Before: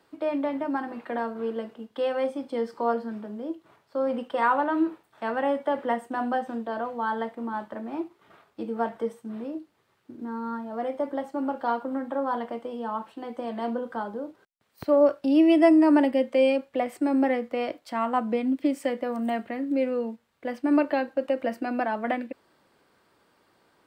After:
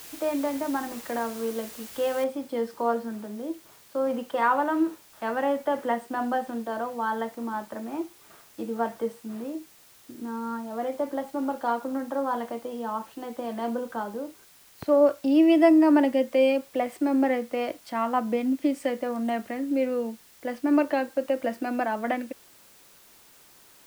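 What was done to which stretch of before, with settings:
0:02.24: noise floor change −44 dB −55 dB

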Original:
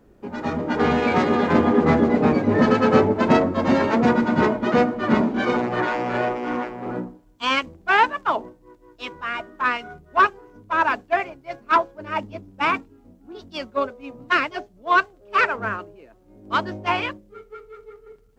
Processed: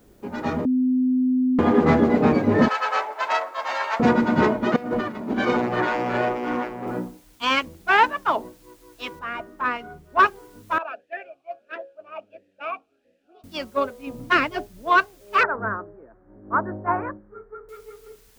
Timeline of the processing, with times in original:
0:00.65–0:01.59: beep over 255 Hz −17 dBFS
0:02.68–0:04.00: high-pass filter 760 Hz 24 dB per octave
0:04.76–0:05.38: compressor whose output falls as the input rises −29 dBFS
0:06.87: noise floor change −66 dB −58 dB
0:09.19–0:10.19: high-shelf EQ 2,100 Hz −10.5 dB
0:10.78–0:13.44: formant filter swept between two vowels a-e 1.5 Hz
0:14.07–0:14.90: low-shelf EQ 280 Hz +9 dB
0:15.43–0:17.69: Butterworth low-pass 1,700 Hz 48 dB per octave

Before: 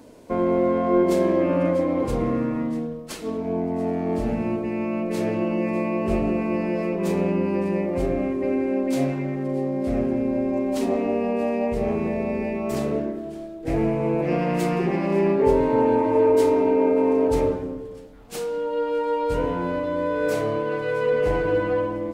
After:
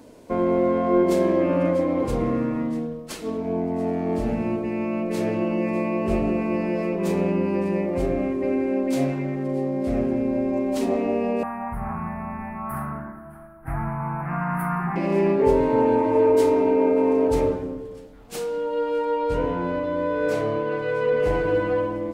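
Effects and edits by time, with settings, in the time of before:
0:11.43–0:14.96: drawn EQ curve 170 Hz 0 dB, 490 Hz −27 dB, 790 Hz +3 dB, 1,400 Hz +11 dB, 3,600 Hz −27 dB, 7,300 Hz −26 dB, 10,000 Hz +3 dB
0:19.05–0:21.20: high-shelf EQ 7,100 Hz −9.5 dB

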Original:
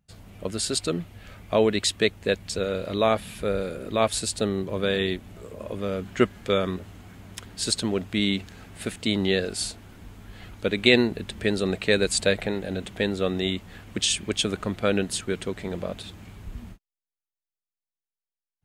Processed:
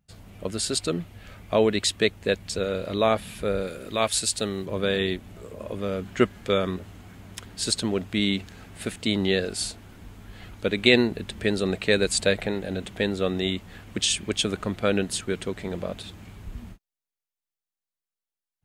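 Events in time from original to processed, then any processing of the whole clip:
0:03.67–0:04.66: tilt shelving filter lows −4 dB, about 1,400 Hz

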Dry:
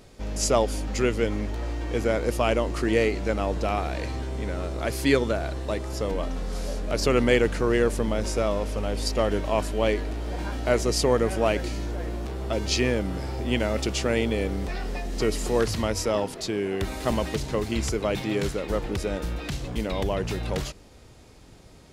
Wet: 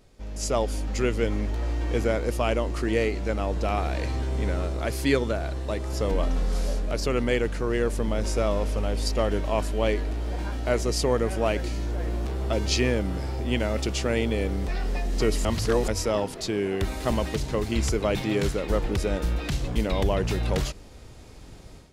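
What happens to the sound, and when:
0:15.45–0:15.88: reverse
whole clip: low-shelf EQ 62 Hz +7 dB; automatic gain control; level −8.5 dB

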